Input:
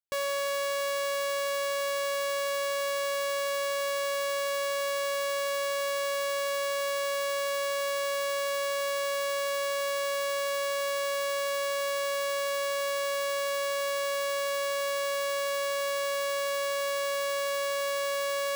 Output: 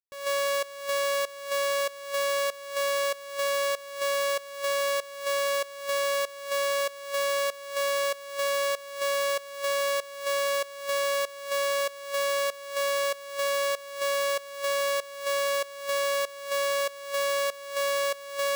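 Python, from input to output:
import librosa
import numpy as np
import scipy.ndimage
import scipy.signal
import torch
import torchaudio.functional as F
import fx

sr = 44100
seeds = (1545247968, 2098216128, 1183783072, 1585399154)

y = fx.volume_shaper(x, sr, bpm=96, per_beat=1, depth_db=-18, release_ms=262.0, shape='slow start')
y = y * librosa.db_to_amplitude(3.5)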